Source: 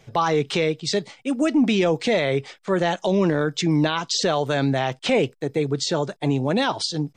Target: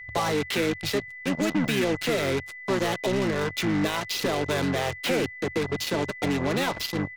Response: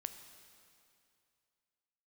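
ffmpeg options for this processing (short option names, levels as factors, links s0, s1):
-filter_complex "[0:a]adynamicequalizer=threshold=0.02:dfrequency=990:dqfactor=0.83:tfrequency=990:tqfactor=0.83:attack=5:release=100:ratio=0.375:range=3:mode=cutabove:tftype=bell,acrossover=split=86|330|3000[s0][s1][s2][s3];[s0]acompressor=threshold=0.00316:ratio=4[s4];[s1]acompressor=threshold=0.0178:ratio=4[s5];[s2]acompressor=threshold=0.0501:ratio=4[s6];[s3]acompressor=threshold=0.0141:ratio=4[s7];[s4][s5][s6][s7]amix=inputs=4:normalize=0,aresample=16000,asoftclip=type=tanh:threshold=0.0944,aresample=44100,asplit=2[s8][s9];[s9]asetrate=29433,aresample=44100,atempo=1.49831,volume=0.631[s10];[s8][s10]amix=inputs=2:normalize=0,acrossover=split=110[s11][s12];[s12]acrusher=bits=4:mix=0:aa=0.5[s13];[s11][s13]amix=inputs=2:normalize=0,aeval=exprs='val(0)+0.01*sin(2*PI*2000*n/s)':c=same,volume=1.19"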